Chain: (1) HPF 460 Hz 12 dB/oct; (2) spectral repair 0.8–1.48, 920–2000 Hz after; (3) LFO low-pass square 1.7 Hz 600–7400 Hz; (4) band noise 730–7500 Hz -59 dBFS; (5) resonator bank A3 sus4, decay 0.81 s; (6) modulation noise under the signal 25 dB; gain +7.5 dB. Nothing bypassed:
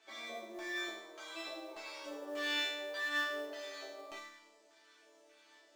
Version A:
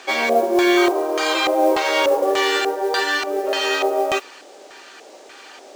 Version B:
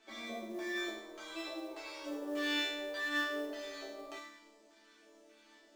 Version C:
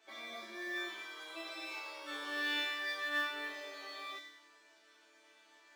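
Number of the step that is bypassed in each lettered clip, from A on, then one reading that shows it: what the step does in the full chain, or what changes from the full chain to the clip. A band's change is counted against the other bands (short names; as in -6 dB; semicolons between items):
5, 2 kHz band -9.5 dB; 1, 250 Hz band +7.5 dB; 3, 500 Hz band -4.5 dB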